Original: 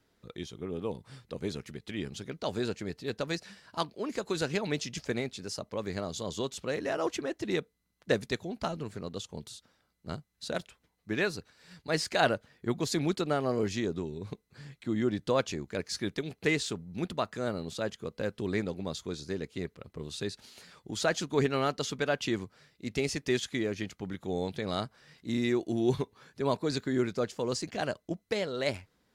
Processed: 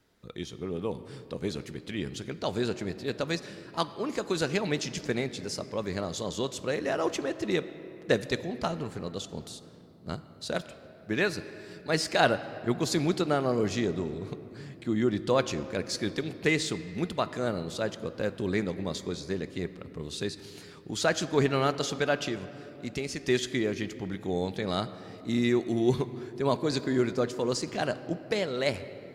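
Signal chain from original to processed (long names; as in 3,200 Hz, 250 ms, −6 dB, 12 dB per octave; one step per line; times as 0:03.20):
0:22.18–0:23.28: downward compressor 2 to 1, threshold −36 dBFS, peak gain reduction 6.5 dB
on a send: convolution reverb RT60 3.4 s, pre-delay 6 ms, DRR 12.5 dB
on the sum: level +2.5 dB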